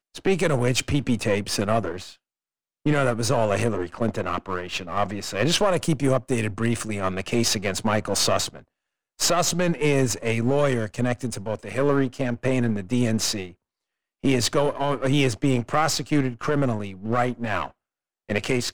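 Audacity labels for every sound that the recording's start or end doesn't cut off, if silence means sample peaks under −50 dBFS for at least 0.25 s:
2.860000	8.640000	sound
9.190000	13.540000	sound
14.230000	17.710000	sound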